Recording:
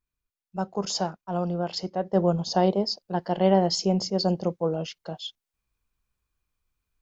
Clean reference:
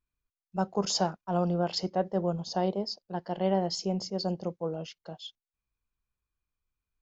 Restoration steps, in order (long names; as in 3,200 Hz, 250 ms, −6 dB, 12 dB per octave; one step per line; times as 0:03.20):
level 0 dB, from 0:02.13 −7 dB